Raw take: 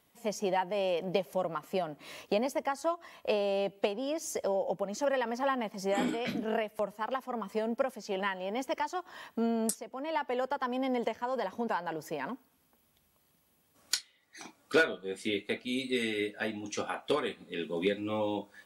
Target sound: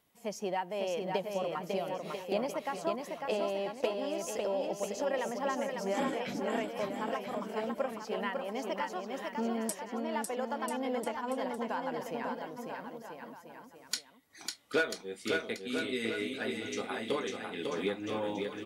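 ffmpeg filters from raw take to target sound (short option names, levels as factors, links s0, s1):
-af "aecho=1:1:550|990|1342|1624|1849:0.631|0.398|0.251|0.158|0.1,volume=0.631"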